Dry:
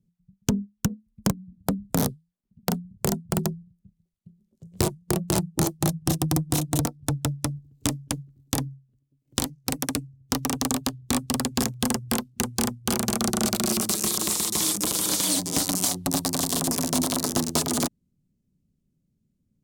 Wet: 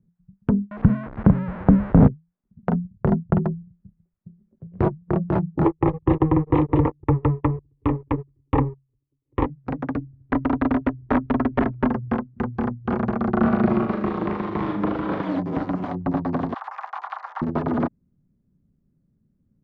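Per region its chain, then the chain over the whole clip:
0:00.71–0:02.08: spike at every zero crossing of −12 dBFS + spectral tilt −3.5 dB per octave + hum removal 132.5 Hz, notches 4
0:02.73–0:03.38: noise gate −43 dBFS, range −12 dB + low-shelf EQ 190 Hz +7 dB
0:05.65–0:09.46: parametric band 180 Hz −6.5 dB 0.44 octaves + leveller curve on the samples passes 3 + phaser with its sweep stopped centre 1,000 Hz, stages 8
0:09.99–0:11.89: comb filter 3 ms, depth 58% + wrap-around overflow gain 15.5 dB
0:13.33–0:15.23: low-pass filter 4,600 Hz + flutter between parallel walls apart 6.7 metres, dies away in 0.47 s
0:16.54–0:17.42: Butterworth high-pass 740 Hz + frequency shifter +94 Hz
whole clip: brickwall limiter −10 dBFS; low-pass filter 1,700 Hz 24 dB per octave; level +6 dB

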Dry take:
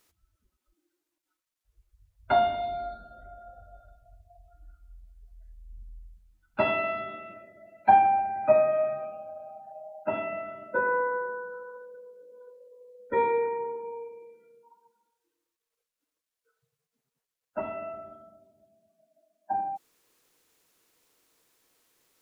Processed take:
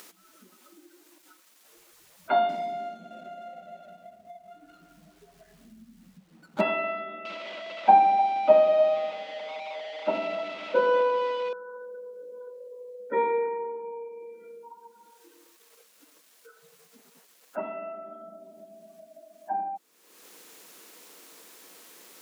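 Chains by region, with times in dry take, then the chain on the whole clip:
0:02.49–0:06.61: running median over 25 samples + parametric band 130 Hz +11.5 dB 2 octaves
0:07.25–0:11.53: spike at every zero crossing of −17 dBFS + loudspeaker in its box 110–3,000 Hz, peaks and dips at 140 Hz +10 dB, 290 Hz +4 dB, 520 Hz +8 dB, 890 Hz +3 dB, 1,700 Hz −9 dB + echo with a time of its own for lows and highs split 590 Hz, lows 208 ms, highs 304 ms, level −14 dB
whole clip: elliptic high-pass filter 180 Hz, stop band 40 dB; upward compression, threshold −34 dBFS

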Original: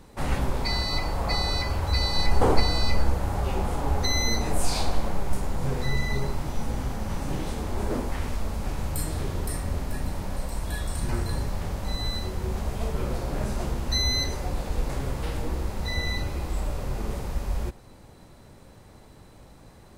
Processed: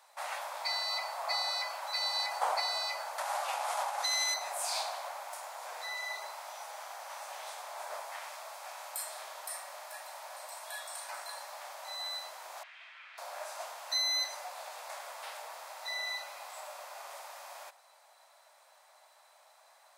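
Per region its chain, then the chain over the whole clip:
0:03.18–0:04.34: variable-slope delta modulation 64 kbit/s + low-shelf EQ 370 Hz −7.5 dB + envelope flattener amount 100%
0:12.63–0:13.18: flat-topped band-pass 2,300 Hz, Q 1.5 + envelope flattener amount 50%
whole clip: Chebyshev high-pass filter 620 Hz, order 5; notch filter 2,900 Hz, Q 27; level −3.5 dB

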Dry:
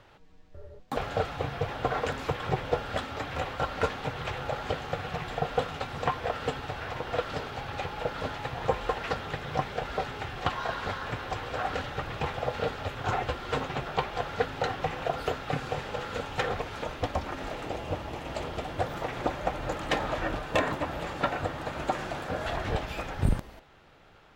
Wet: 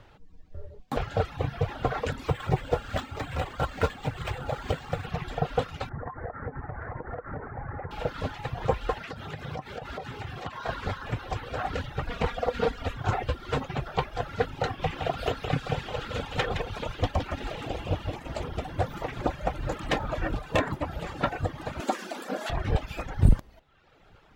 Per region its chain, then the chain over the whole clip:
0:02.26–0:05.06: high-shelf EQ 5,900 Hz +11 dB + linearly interpolated sample-rate reduction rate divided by 4×
0:05.89–0:07.91: Butterworth low-pass 2,000 Hz 72 dB per octave + downward compressor 8 to 1, threshold −32 dBFS
0:09.01–0:10.66: high-pass filter 73 Hz + downward compressor 4 to 1, threshold −33 dBFS
0:12.07–0:12.97: comb filter 4.2 ms, depth 94% + highs frequency-modulated by the lows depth 0.27 ms
0:14.79–0:18.16: parametric band 3,200 Hz +5 dB 0.93 octaves + single-tap delay 165 ms −6 dB
0:21.80–0:22.50: linear-phase brick-wall high-pass 190 Hz + bass and treble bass +5 dB, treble +8 dB
whole clip: reverb reduction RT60 1 s; low-shelf EQ 210 Hz +8.5 dB

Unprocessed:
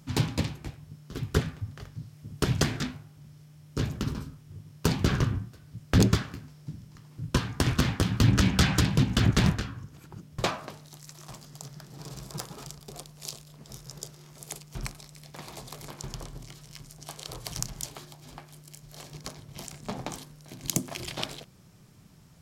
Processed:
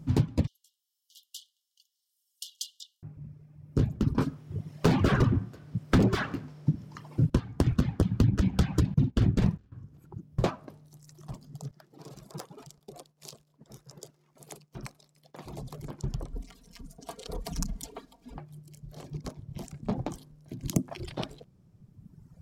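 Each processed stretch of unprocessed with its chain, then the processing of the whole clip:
0:00.47–0:03.03: linear-phase brick-wall high-pass 2,800 Hz + high-shelf EQ 4,700 Hz +6 dB
0:04.18–0:07.30: mid-hump overdrive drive 34 dB, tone 3,300 Hz, clips at −7 dBFS + expander for the loud parts, over −27 dBFS
0:08.94–0:09.72: noise gate −25 dBFS, range −23 dB + double-tracking delay 49 ms −5.5 dB
0:11.71–0:15.46: high-pass filter 470 Hz 6 dB per octave + downward expander −53 dBFS
0:16.31–0:18.38: mains-hum notches 50/100/150/200/250/300/350 Hz + comb filter 4.3 ms, depth 95%
whole clip: reverb reduction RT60 1.9 s; tilt shelving filter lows +8.5 dB, about 810 Hz; downward compressor 6 to 1, threshold −20 dBFS

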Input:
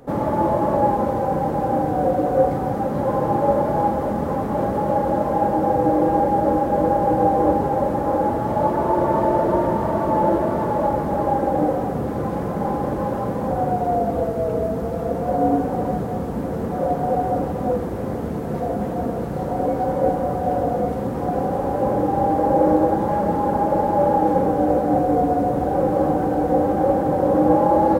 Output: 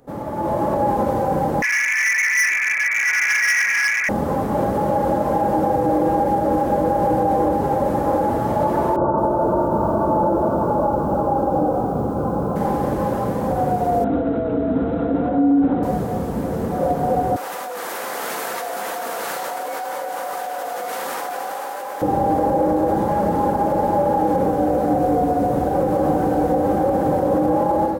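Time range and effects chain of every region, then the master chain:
0:01.62–0:04.09: voice inversion scrambler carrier 2,500 Hz + hard clipping −18.5 dBFS
0:08.96–0:12.56: Butterworth low-pass 1,500 Hz 96 dB per octave + feedback echo at a low word length 216 ms, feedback 55%, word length 8 bits, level −12 dB
0:14.04–0:15.83: downward compressor, threshold −21 dBFS + linear-phase brick-wall low-pass 4,000 Hz + hollow resonant body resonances 280/1,400 Hz, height 16 dB, ringing for 90 ms
0:17.36–0:22.02: high-pass filter 1,400 Hz + envelope flattener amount 100%
whole clip: high-shelf EQ 4,300 Hz +6 dB; brickwall limiter −11.5 dBFS; automatic gain control gain up to 11.5 dB; level −7.5 dB

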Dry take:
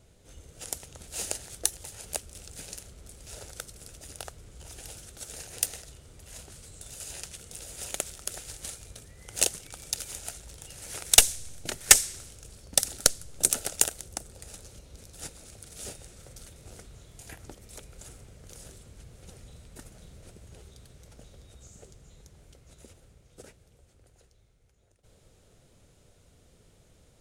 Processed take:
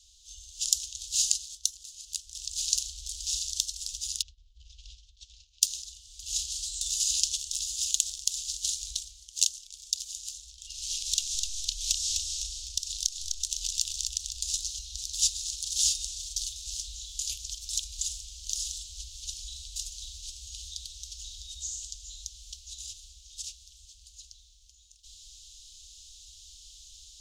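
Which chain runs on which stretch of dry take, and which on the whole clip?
0:04.22–0:05.62: downward expander −41 dBFS + head-to-tape spacing loss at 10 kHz 39 dB
0:10.49–0:14.42: high-shelf EQ 4,700 Hz −10.5 dB + downward compressor 12 to 1, threshold −40 dBFS + echo with shifted repeats 253 ms, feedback 50%, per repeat −37 Hz, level −5 dB
whole clip: inverse Chebyshev band-stop filter 120–1,800 Hz, stop band 40 dB; flat-topped bell 4,400 Hz +15 dB; automatic gain control gain up to 8 dB; level −2 dB

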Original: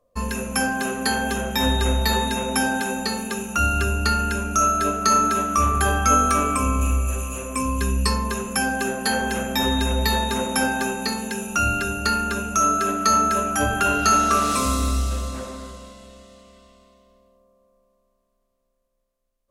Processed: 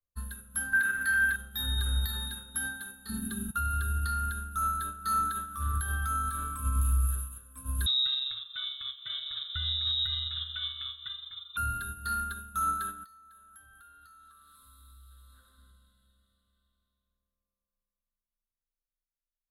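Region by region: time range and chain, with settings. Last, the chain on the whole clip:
0:00.73–0:01.36: mu-law and A-law mismatch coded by A + flat-topped bell 1,900 Hz +15.5 dB 1.1 octaves
0:03.09–0:03.51: low shelf with overshoot 410 Hz +10 dB, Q 3 + envelope flattener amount 50%
0:07.86–0:11.57: voice inversion scrambler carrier 3,800 Hz + bit-depth reduction 12 bits, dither triangular + hard clipping −10 dBFS
0:13.04–0:15.58: parametric band 130 Hz −11.5 dB 1.9 octaves + downward compressor 16 to 1, threshold −30 dBFS
whole clip: drawn EQ curve 100 Hz 0 dB, 280 Hz −16 dB, 430 Hz −20 dB, 640 Hz −24 dB, 990 Hz −17 dB, 1,500 Hz +2 dB, 2,400 Hz −26 dB, 3,700 Hz +2 dB, 5,800 Hz −28 dB, 11,000 Hz +6 dB; brickwall limiter −18 dBFS; expander for the loud parts 2.5 to 1, over −34 dBFS

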